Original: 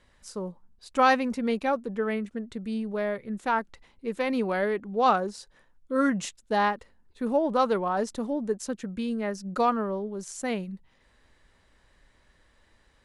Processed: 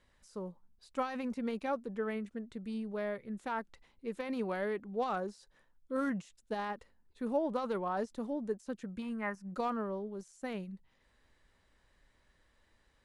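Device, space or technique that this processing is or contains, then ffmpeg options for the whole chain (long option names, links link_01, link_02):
de-esser from a sidechain: -filter_complex "[0:a]asplit=2[link_01][link_02];[link_02]highpass=6800,apad=whole_len=575145[link_03];[link_01][link_03]sidechaincompress=threshold=-54dB:ratio=10:attack=2.6:release=20,asettb=1/sr,asplit=3[link_04][link_05][link_06];[link_04]atrim=end=9.024[link_07];[link_05]atrim=start=9.02:end=9.52,asetpts=PTS-STARTPTS,afade=type=in:duration=0.004:curve=qsin,afade=type=out:start_time=0.496:duration=0.004:curve=qsin,equalizer=frequency=500:width_type=o:width=1:gain=-8,equalizer=frequency=1000:width_type=o:width=1:gain=11,equalizer=frequency=2000:width_type=o:width=1:gain=8,equalizer=frequency=4000:width_type=o:width=1:gain=-11[link_08];[link_06]atrim=start=9.516[link_09];[link_07][link_08]acrossfade=duration=0.004:curve1=hsin:curve2=qsin[link_10];[link_10][link_09]acrossfade=duration=0.004:curve1=qsin:curve2=hsin,volume=-7.5dB"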